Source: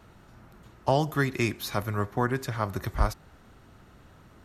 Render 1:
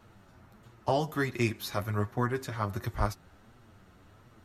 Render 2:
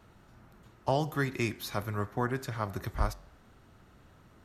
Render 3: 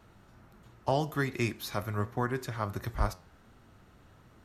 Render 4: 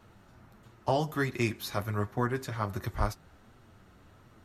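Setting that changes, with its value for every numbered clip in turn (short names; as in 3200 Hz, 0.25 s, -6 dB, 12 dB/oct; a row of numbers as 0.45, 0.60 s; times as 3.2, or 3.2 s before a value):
flange, regen: +19, -90, +83, -27%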